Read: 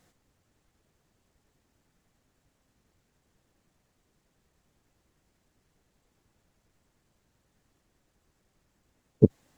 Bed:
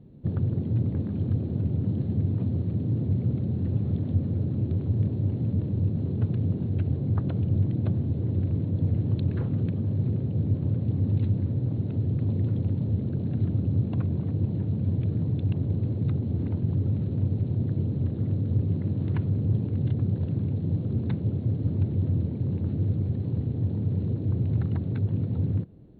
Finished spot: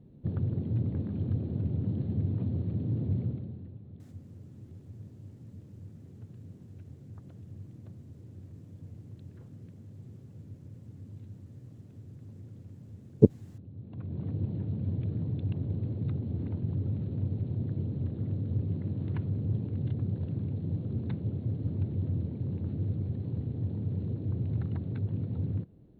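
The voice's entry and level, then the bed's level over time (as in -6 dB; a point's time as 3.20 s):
4.00 s, 0.0 dB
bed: 3.20 s -4.5 dB
3.79 s -21.5 dB
13.75 s -21.5 dB
14.24 s -6 dB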